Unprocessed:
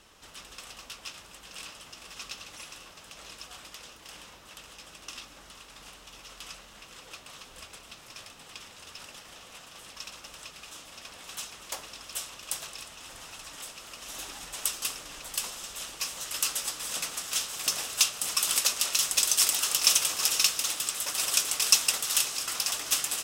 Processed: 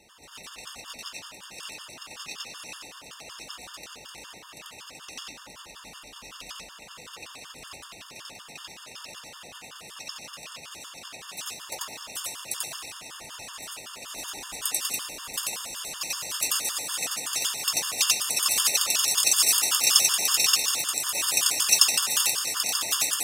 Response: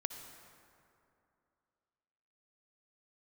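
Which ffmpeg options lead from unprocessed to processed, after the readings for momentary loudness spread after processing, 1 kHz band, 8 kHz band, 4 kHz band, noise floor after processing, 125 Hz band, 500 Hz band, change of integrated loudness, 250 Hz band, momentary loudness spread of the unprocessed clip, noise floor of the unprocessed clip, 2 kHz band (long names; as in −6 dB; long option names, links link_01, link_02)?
23 LU, +4.0 dB, +3.5 dB, +3.5 dB, −47 dBFS, +1.5 dB, +3.5 dB, +3.5 dB, +3.5 dB, 23 LU, −52 dBFS, +3.5 dB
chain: -filter_complex "[0:a]highpass=frequency=93:poles=1,asplit=2[link_01][link_02];[1:a]atrim=start_sample=2205,adelay=90[link_03];[link_02][link_03]afir=irnorm=-1:irlink=0,volume=2dB[link_04];[link_01][link_04]amix=inputs=2:normalize=0,afftfilt=real='re*gt(sin(2*PI*5.3*pts/sr)*(1-2*mod(floor(b*sr/1024/910),2)),0)':imag='im*gt(sin(2*PI*5.3*pts/sr)*(1-2*mod(floor(b*sr/1024/910),2)),0)':win_size=1024:overlap=0.75,volume=3dB"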